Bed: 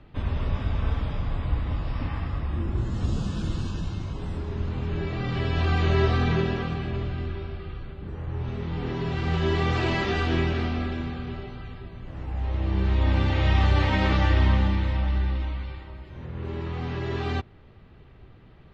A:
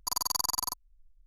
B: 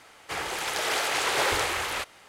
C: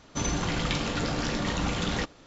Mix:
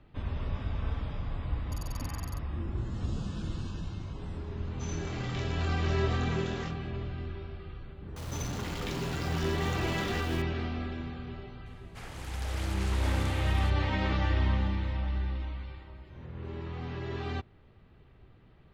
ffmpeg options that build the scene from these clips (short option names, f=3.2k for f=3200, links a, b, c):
-filter_complex "[3:a]asplit=2[a][b];[0:a]volume=-7dB[c];[1:a]aresample=32000,aresample=44100[d];[a]asplit=2[e][f];[f]adelay=25,volume=-3.5dB[g];[e][g]amix=inputs=2:normalize=0[h];[b]aeval=exprs='val(0)+0.5*0.0376*sgn(val(0))':c=same[i];[d]atrim=end=1.26,asetpts=PTS-STARTPTS,volume=-17.5dB,afade=t=in:d=0.004:c=hsin,afade=t=out:st=1.256:d=0.004:c=hsin,adelay=1650[j];[h]atrim=end=2.26,asetpts=PTS-STARTPTS,volume=-15.5dB,afade=t=in:d=0.004:c=hsin,afade=t=out:st=2.256:d=0.004:c=hsin,adelay=4640[k];[i]atrim=end=2.26,asetpts=PTS-STARTPTS,volume=-12.5dB,afade=t=in:d=0.004:c=hsin,afade=t=out:st=2.256:d=0.004:c=hsin,adelay=8160[l];[2:a]atrim=end=2.28,asetpts=PTS-STARTPTS,volume=-15.5dB,afade=t=in:d=0.004:c=hsin,afade=t=out:st=2.276:d=0.004:c=hsin,adelay=11660[m];[c][j][k][l][m]amix=inputs=5:normalize=0"